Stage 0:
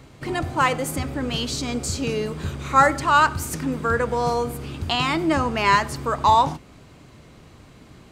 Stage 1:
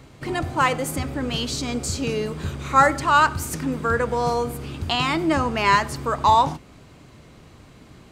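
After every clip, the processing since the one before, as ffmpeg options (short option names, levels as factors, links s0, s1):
-af anull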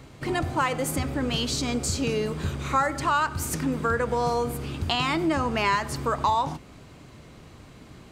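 -af "acompressor=threshold=0.0891:ratio=4"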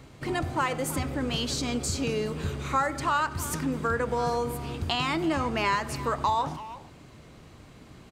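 -filter_complex "[0:a]asplit=2[s0][s1];[s1]adelay=330,highpass=300,lowpass=3400,asoftclip=type=hard:threshold=0.0891,volume=0.224[s2];[s0][s2]amix=inputs=2:normalize=0,volume=0.75"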